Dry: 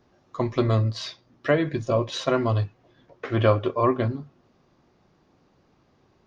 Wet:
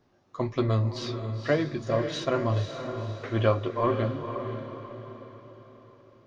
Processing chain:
flanger 1.9 Hz, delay 6.4 ms, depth 3.8 ms, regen −59%
feedback delay with all-pass diffusion 510 ms, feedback 45%, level −7.5 dB

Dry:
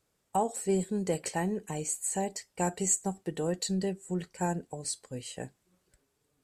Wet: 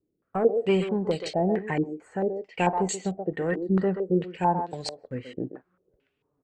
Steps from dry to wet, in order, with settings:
low-shelf EQ 76 Hz −7 dB
leveller curve on the samples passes 1
rotating-speaker cabinet horn 1 Hz
far-end echo of a speakerphone 130 ms, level −7 dB
low-pass on a step sequencer 4.5 Hz 330–3,900 Hz
level +3 dB

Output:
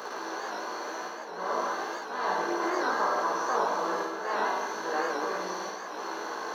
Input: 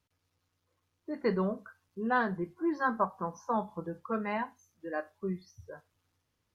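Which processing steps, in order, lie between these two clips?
compressor on every frequency bin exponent 0.2
volume swells 303 ms
high-pass filter 510 Hz 12 dB per octave
parametric band 2,000 Hz −8 dB 1.3 octaves
flutter between parallel walls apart 9.4 metres, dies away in 1.3 s
multi-voice chorus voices 2, 0.94 Hz, delay 18 ms, depth 3 ms
high-shelf EQ 2,900 Hz +11.5 dB
wow of a warped record 78 rpm, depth 100 cents
level −1.5 dB

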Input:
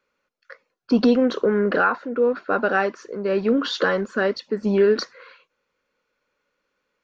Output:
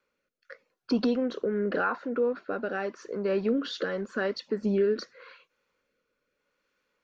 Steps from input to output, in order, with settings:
downward compressor 1.5 to 1, threshold −33 dBFS, peak gain reduction 7.5 dB
rotating-speaker cabinet horn 0.85 Hz

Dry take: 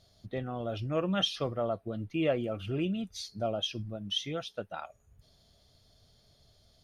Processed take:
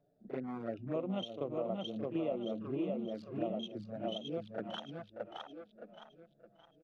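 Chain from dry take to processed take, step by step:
adaptive Wiener filter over 41 samples
parametric band 77 Hz −14.5 dB 0.99 octaves
repeating echo 617 ms, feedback 36%, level −4 dB
flanger swept by the level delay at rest 7.1 ms, full sweep at −31.5 dBFS
downward compressor 5 to 1, threshold −37 dBFS, peak gain reduction 12 dB
three-way crossover with the lows and the highs turned down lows −19 dB, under 150 Hz, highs −13 dB, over 2,200 Hz
backwards echo 36 ms −9.5 dB
level +4 dB

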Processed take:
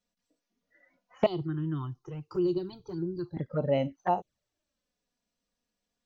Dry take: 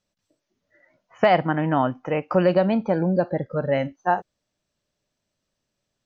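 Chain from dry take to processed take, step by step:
0:01.26–0:03.37: drawn EQ curve 150 Hz 0 dB, 220 Hz −24 dB, 360 Hz +3 dB, 570 Hz −29 dB, 1,100 Hz −10 dB, 2,300 Hz −25 dB, 3,900 Hz +3 dB
flanger swept by the level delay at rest 4.2 ms, full sweep at −21 dBFS
level −3 dB

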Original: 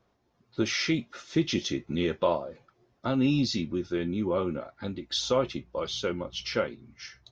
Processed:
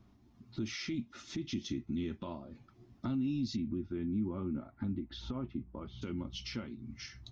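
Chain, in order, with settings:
0:03.56–0:06.01: low-pass filter 2,400 Hz → 1,400 Hz 12 dB per octave
downward compressor 2.5 to 1, threshold −46 dBFS, peak gain reduction 17 dB
low shelf with overshoot 340 Hz +11 dB, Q 1.5
brickwall limiter −26.5 dBFS, peak gain reduction 7.5 dB
thirty-one-band graphic EQ 160 Hz −10 dB, 500 Hz −9 dB, 1,600 Hz −4 dB
level +1 dB

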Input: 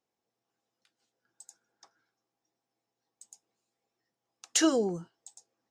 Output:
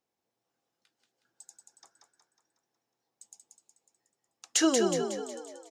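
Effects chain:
echo with shifted repeats 183 ms, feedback 51%, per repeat +36 Hz, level −5 dB

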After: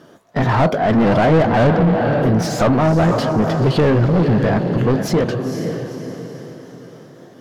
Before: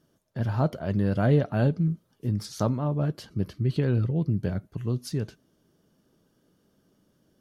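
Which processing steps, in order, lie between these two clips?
pitch shifter swept by a sawtooth +2.5 semitones, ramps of 524 ms
feedback delay with all-pass diffusion 493 ms, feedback 44%, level −11 dB
mid-hump overdrive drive 31 dB, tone 1,200 Hz, clips at −11 dBFS
level +5.5 dB

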